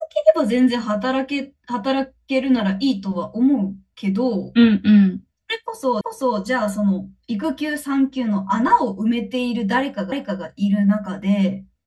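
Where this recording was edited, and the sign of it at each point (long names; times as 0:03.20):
0:06.01: the same again, the last 0.38 s
0:10.12: the same again, the last 0.31 s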